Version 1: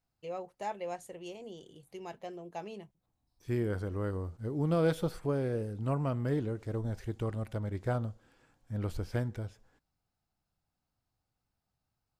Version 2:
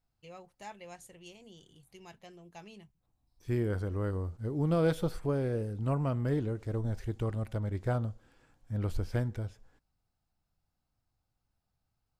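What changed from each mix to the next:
first voice: add parametric band 520 Hz −12 dB 2.4 octaves
master: add low-shelf EQ 67 Hz +8.5 dB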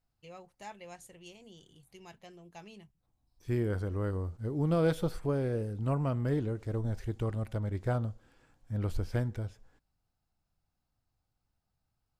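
nothing changed

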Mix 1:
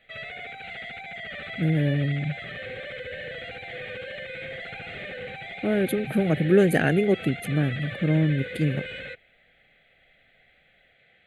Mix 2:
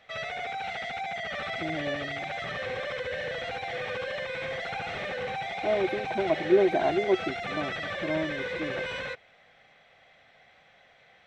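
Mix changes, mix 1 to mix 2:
speech: add pair of resonant band-passes 490 Hz, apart 0.82 octaves
master: remove phaser with its sweep stopped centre 2,400 Hz, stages 4

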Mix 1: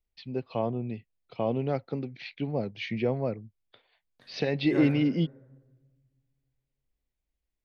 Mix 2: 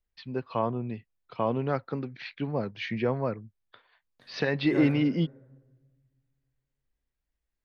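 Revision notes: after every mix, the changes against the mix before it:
first voice: add flat-topped bell 1,300 Hz +9.5 dB 1.1 octaves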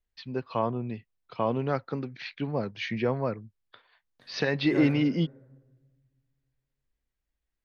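first voice: remove high-frequency loss of the air 90 metres

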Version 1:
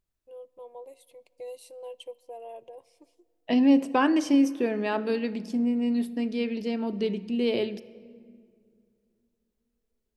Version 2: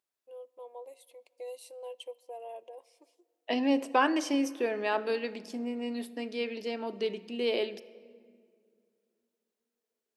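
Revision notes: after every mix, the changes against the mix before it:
master: add high-pass filter 430 Hz 12 dB per octave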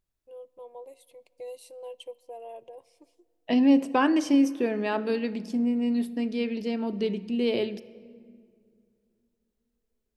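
master: remove high-pass filter 430 Hz 12 dB per octave

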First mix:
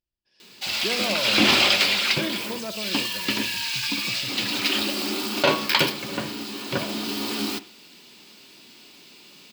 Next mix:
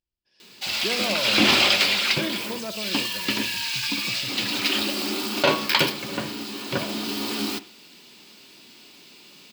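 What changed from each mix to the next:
nothing changed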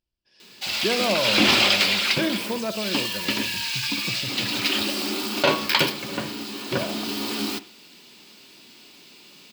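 speech +5.5 dB

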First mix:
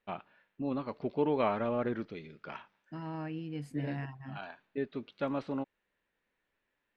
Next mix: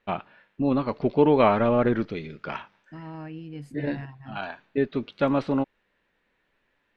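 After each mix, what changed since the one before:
first voice +10.5 dB
master: add low-shelf EQ 68 Hz +9.5 dB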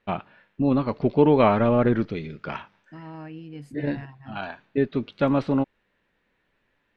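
first voice: add low-shelf EQ 150 Hz +11.5 dB
master: add low-shelf EQ 68 Hz −9.5 dB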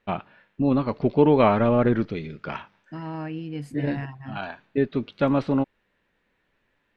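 second voice +6.5 dB

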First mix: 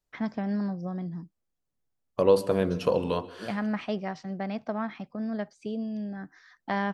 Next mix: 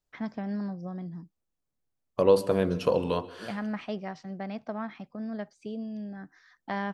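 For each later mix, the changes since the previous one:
first voice −3.5 dB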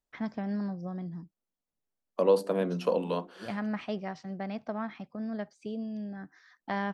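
second voice: add Chebyshev high-pass with heavy ripple 170 Hz, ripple 3 dB
reverb: off

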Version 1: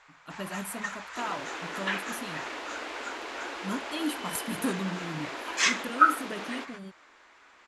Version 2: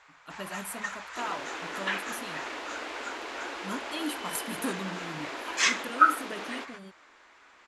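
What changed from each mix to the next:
speech: add low-shelf EQ 240 Hz −8 dB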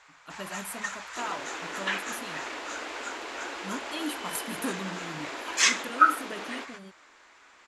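first sound: add high-shelf EQ 5,700 Hz +9.5 dB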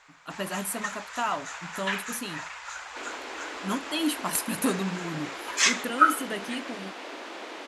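speech +7.0 dB
second sound: entry +1.80 s

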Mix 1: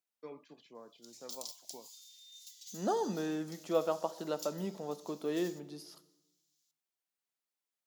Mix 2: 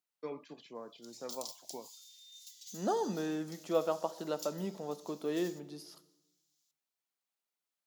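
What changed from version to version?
first voice +6.0 dB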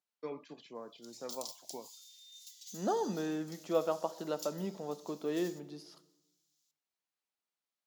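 second voice: add high-frequency loss of the air 53 metres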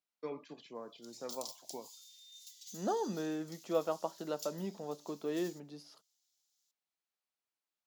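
reverb: off

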